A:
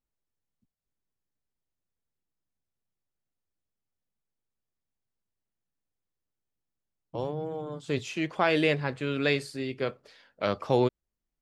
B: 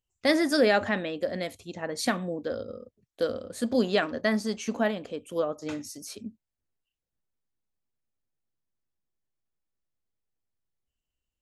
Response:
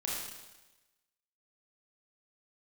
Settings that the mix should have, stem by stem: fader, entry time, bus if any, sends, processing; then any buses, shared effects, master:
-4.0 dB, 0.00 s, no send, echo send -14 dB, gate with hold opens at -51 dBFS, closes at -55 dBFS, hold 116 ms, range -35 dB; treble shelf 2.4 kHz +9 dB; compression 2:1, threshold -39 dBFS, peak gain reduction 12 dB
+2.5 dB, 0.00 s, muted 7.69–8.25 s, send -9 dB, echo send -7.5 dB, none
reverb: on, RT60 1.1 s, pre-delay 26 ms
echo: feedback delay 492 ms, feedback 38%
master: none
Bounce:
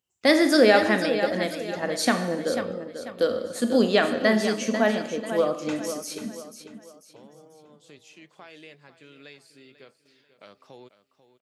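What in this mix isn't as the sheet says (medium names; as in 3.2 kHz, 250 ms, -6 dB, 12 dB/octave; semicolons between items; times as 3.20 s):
stem A -4.0 dB -> -13.0 dB; master: extra high-pass 150 Hz 12 dB/octave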